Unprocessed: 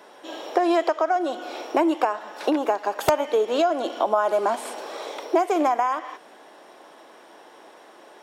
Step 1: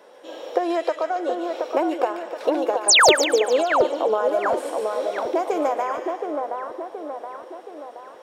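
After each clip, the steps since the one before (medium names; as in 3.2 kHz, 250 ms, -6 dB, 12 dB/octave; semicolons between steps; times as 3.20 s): peaking EQ 510 Hz +13.5 dB 0.28 oct; painted sound fall, 2.88–3.12 s, 310–10000 Hz -9 dBFS; on a send: two-band feedback delay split 1.7 kHz, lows 723 ms, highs 146 ms, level -4.5 dB; on the sum: trim -4.5 dB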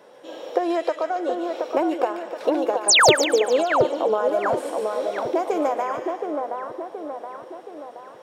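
peaking EQ 130 Hz +15 dB 1 oct; trim -1 dB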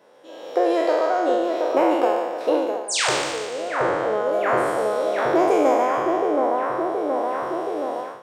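spectral sustain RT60 1.41 s; level rider gain up to 15 dB; trim -6.5 dB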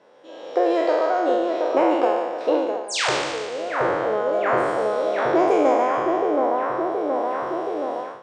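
Bessel low-pass 5.8 kHz, order 4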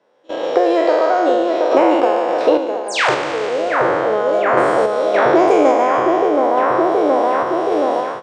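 random-step tremolo; gate -41 dBFS, range -31 dB; three bands compressed up and down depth 70%; trim +8.5 dB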